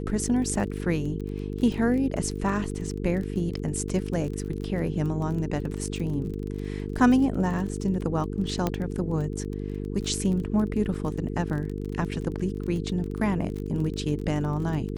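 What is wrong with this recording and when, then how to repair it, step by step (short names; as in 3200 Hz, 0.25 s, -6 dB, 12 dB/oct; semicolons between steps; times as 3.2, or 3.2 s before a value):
buzz 50 Hz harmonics 9 -32 dBFS
crackle 24/s -32 dBFS
8.67 pop -12 dBFS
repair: de-click; de-hum 50 Hz, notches 9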